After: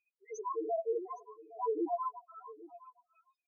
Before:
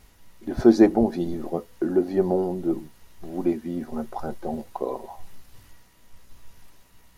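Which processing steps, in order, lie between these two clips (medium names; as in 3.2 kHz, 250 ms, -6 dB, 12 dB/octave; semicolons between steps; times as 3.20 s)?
spectral gate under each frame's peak -20 dB strong; gate -44 dBFS, range -17 dB; high-pass 110 Hz 24 dB/octave; comb 3.7 ms, depth 44%; LFO high-pass sine 0.47 Hz 450–3000 Hz; in parallel at +2.5 dB: compressor with a negative ratio -32 dBFS, ratio -0.5; on the sum: plain phase-vocoder stretch 0.63×; peak limiter -24.5 dBFS, peak gain reduction 10.5 dB; wide varispeed 1.3×; loudest bins only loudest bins 1; on a send: delay 814 ms -18.5 dB; on the sum: trim +7.5 dB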